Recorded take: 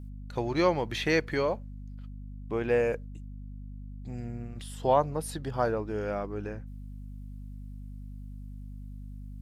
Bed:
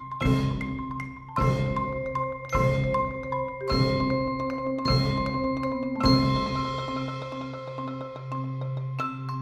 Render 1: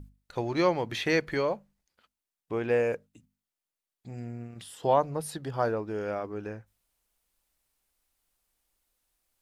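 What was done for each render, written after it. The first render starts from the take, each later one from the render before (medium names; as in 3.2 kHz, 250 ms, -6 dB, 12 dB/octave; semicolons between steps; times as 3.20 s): hum notches 50/100/150/200/250 Hz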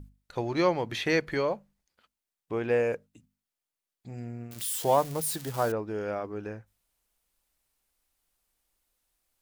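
4.51–5.72 s: zero-crossing glitches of -28 dBFS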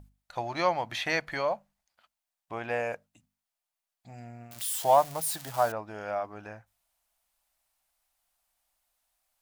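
resonant low shelf 540 Hz -6.5 dB, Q 3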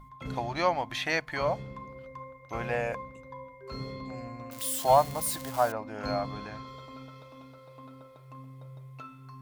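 add bed -15 dB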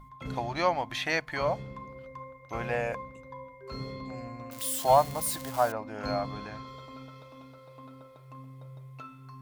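no audible change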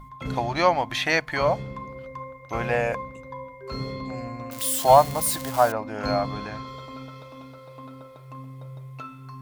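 trim +6.5 dB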